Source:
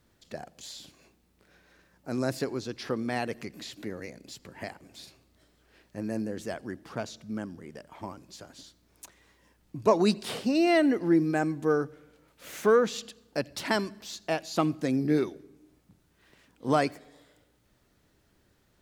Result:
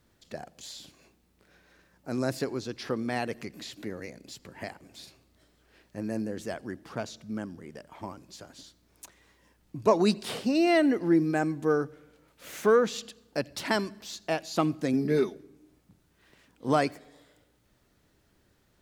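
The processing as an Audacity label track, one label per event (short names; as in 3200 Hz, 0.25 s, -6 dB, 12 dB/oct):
14.930000	15.340000	comb 4.7 ms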